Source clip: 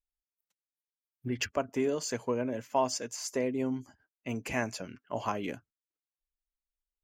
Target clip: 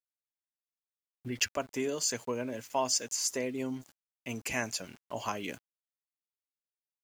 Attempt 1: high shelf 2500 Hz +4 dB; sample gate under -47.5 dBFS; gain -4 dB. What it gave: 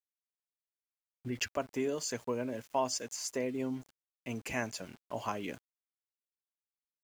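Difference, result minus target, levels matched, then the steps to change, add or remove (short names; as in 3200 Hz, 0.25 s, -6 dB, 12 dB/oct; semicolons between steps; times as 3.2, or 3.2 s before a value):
4000 Hz band -3.0 dB
change: high shelf 2500 Hz +12.5 dB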